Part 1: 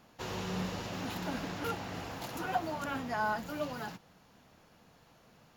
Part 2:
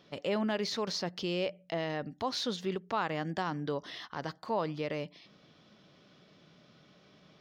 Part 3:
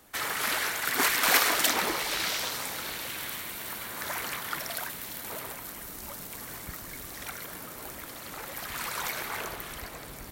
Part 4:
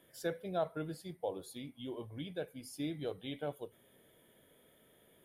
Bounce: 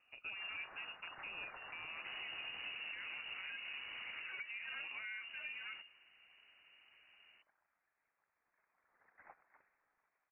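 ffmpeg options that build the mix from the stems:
ffmpeg -i stem1.wav -i stem2.wav -i stem3.wav -i stem4.wav -filter_complex "[0:a]lowpass=frequency=1800:poles=1,bandreject=frequency=60:width_type=h:width=6,bandreject=frequency=120:width_type=h:width=6,bandreject=frequency=180:width_type=h:width=6,bandreject=frequency=240:width_type=h:width=6,bandreject=frequency=300:width_type=h:width=6,bandreject=frequency=360:width_type=h:width=6,bandreject=frequency=420:width_type=h:width=6,bandreject=frequency=480:width_type=h:width=6,bandreject=frequency=540:width_type=h:width=6,bandreject=frequency=600:width_type=h:width=6,acompressor=threshold=-38dB:ratio=2.5,adelay=1850,volume=-4dB[link_01];[1:a]volume=-14dB[link_02];[2:a]agate=range=-20dB:threshold=-31dB:ratio=16:detection=peak,highpass=1100,acompressor=threshold=-30dB:ratio=6,adelay=200,volume=-16.5dB[link_03];[3:a]volume=-9dB[link_04];[link_01][link_02][link_03][link_04]amix=inputs=4:normalize=0,lowpass=frequency=2600:width_type=q:width=0.5098,lowpass=frequency=2600:width_type=q:width=0.6013,lowpass=frequency=2600:width_type=q:width=0.9,lowpass=frequency=2600:width_type=q:width=2.563,afreqshift=-3000,alimiter=level_in=12.5dB:limit=-24dB:level=0:latency=1:release=182,volume=-12.5dB" out.wav

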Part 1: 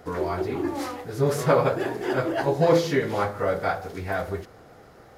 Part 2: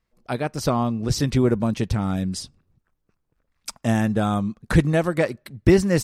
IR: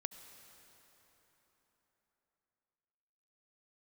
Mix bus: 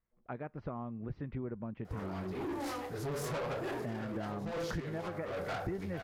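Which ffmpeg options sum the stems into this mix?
-filter_complex "[0:a]acompressor=threshold=-24dB:ratio=2.5,asoftclip=type=tanh:threshold=-31dB,adelay=1850,volume=-3dB[link_01];[1:a]acompressor=threshold=-28dB:ratio=3,lowpass=frequency=2100:width=0.5412,lowpass=frequency=2100:width=1.3066,volume=-11dB,asplit=2[link_02][link_03];[link_03]apad=whole_len=309726[link_04];[link_01][link_04]sidechaincompress=threshold=-43dB:ratio=8:attack=8.8:release=178[link_05];[link_05][link_02]amix=inputs=2:normalize=0"

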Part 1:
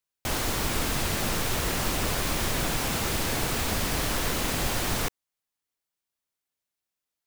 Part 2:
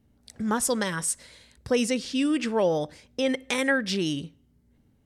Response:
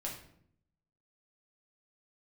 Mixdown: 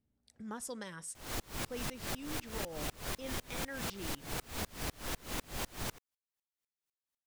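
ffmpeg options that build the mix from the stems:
-filter_complex "[0:a]aeval=exprs='val(0)*pow(10,-32*if(lt(mod(-4*n/s,1),2*abs(-4)/1000),1-mod(-4*n/s,1)/(2*abs(-4)/1000),(mod(-4*n/s,1)-2*abs(-4)/1000)/(1-2*abs(-4)/1000))/20)':channel_layout=same,adelay=900,volume=0dB[link_01];[1:a]volume=-17dB[link_02];[link_01][link_02]amix=inputs=2:normalize=0,acompressor=threshold=-35dB:ratio=6"

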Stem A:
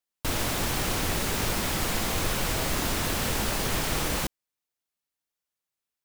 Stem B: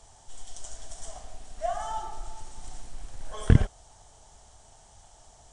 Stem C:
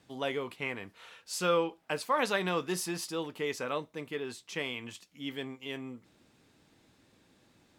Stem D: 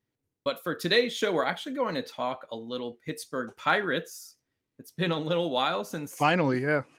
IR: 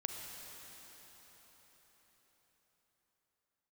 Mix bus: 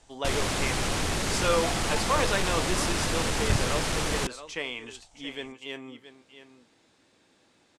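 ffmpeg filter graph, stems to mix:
-filter_complex "[0:a]volume=23.5dB,asoftclip=hard,volume=-23.5dB,volume=1dB[link_01];[1:a]volume=-6dB[link_02];[2:a]bass=frequency=250:gain=-9,treble=frequency=4000:gain=1,volume=2.5dB,asplit=2[link_03][link_04];[link_04]volume=-13dB,aecho=0:1:674:1[link_05];[link_01][link_02][link_03][link_05]amix=inputs=4:normalize=0,lowpass=frequency=9800:width=0.5412,lowpass=frequency=9800:width=1.3066,aeval=exprs='clip(val(0),-1,0.168)':channel_layout=same"

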